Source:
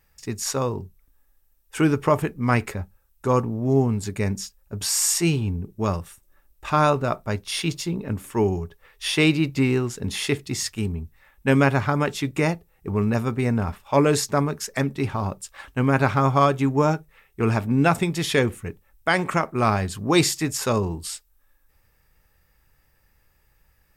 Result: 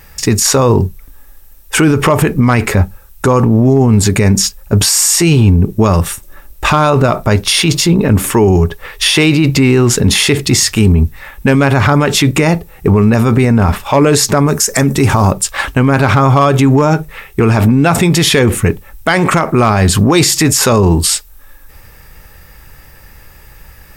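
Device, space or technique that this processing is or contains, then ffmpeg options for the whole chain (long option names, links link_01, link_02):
loud club master: -filter_complex "[0:a]asettb=1/sr,asplit=3[link_01][link_02][link_03];[link_01]atrim=end=14.474[link_04];[link_02]atrim=start=14.47:end=15.32,asetpts=PTS-STARTPTS,afade=type=in:duration=0.004:curve=qsin,afade=type=out:start_time=0.846:duration=0.004:curve=qsin,highshelf=frequency=5100:width_type=q:width=1.5:gain=7[link_05];[link_03]atrim=start=15.316[link_06];[link_04][link_05]acrossfade=duration=0.004:curve1=hsin:curve2=qsin[link_07];[link_07][link_06]acrossfade=duration=0.004:curve1=qsin:curve2=hsin,acompressor=threshold=-21dB:ratio=2,asoftclip=type=hard:threshold=-14dB,alimiter=level_in=25.5dB:limit=-1dB:release=50:level=0:latency=1,volume=-1dB"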